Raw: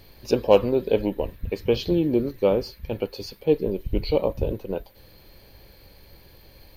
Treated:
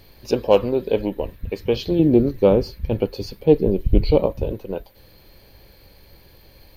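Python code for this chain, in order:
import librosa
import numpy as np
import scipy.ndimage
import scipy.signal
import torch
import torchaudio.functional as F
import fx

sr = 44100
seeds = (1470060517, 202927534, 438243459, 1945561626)

y = fx.low_shelf(x, sr, hz=420.0, db=9.5, at=(1.99, 4.26))
y = fx.doppler_dist(y, sr, depth_ms=0.12)
y = F.gain(torch.from_numpy(y), 1.0).numpy()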